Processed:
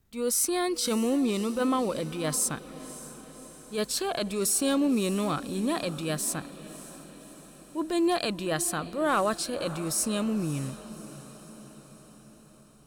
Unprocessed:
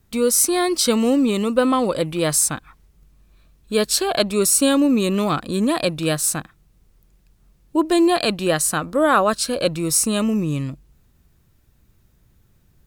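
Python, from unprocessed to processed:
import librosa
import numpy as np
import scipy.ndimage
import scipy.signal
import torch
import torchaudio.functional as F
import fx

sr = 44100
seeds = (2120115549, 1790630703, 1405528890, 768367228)

y = fx.transient(x, sr, attack_db=-8, sustain_db=1)
y = np.clip(y, -10.0 ** (-9.5 / 20.0), 10.0 ** (-9.5 / 20.0))
y = fx.echo_diffused(y, sr, ms=588, feedback_pct=58, wet_db=-15.5)
y = y * 10.0 ** (-8.0 / 20.0)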